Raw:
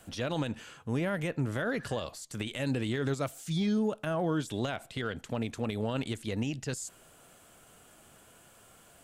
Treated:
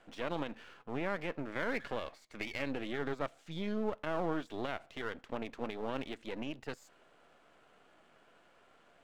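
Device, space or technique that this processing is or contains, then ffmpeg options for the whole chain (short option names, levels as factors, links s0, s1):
crystal radio: -filter_complex "[0:a]asettb=1/sr,asplit=3[s0][s1][s2];[s0]atrim=end=1.484[s3];[s1]atrim=start=1.48:end=2.69,asetpts=PTS-STARTPTS,afade=t=in:d=0.004:c=qsin,afade=t=out:st=1.206:d=0.004:c=qsin,equalizer=f=2200:w=7.1:g=13[s4];[s2]atrim=start=2.686[s5];[s3][s4]acrossfade=d=0.004:c1=hsin:c2=qsin[s6];[s6][s5]acrossfade=d=0.004:c1=qsin:c2=hsin,highpass=270,lowpass=2600,aeval=exprs='if(lt(val(0),0),0.251*val(0),val(0))':c=same"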